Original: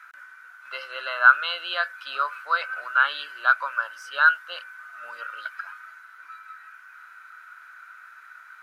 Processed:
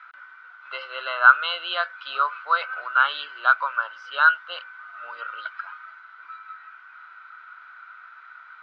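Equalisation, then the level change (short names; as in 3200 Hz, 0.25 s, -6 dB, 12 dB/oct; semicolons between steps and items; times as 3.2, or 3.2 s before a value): speaker cabinet 350–3700 Hz, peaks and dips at 580 Hz -4 dB, 1700 Hz -9 dB, 2500 Hz -5 dB; +5.0 dB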